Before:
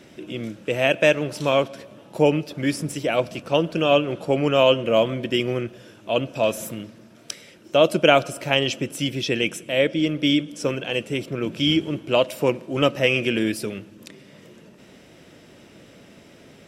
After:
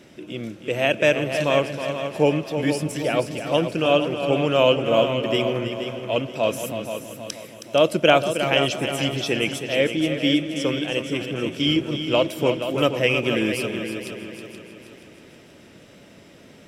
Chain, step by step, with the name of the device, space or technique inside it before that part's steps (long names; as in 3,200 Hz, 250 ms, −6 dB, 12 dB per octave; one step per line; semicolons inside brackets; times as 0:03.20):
multi-head tape echo (echo machine with several playback heads 159 ms, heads second and third, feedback 48%, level −9 dB; tape wow and flutter 23 cents)
level −1 dB